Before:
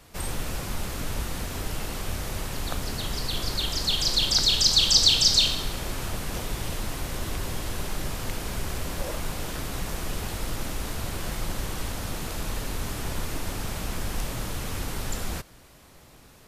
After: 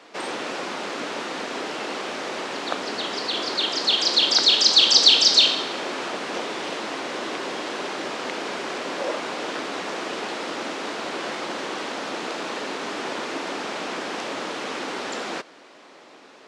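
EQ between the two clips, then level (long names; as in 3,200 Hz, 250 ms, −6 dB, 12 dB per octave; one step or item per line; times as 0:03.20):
Gaussian smoothing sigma 1.6 samples
high-pass filter 280 Hz 24 dB per octave
+8.5 dB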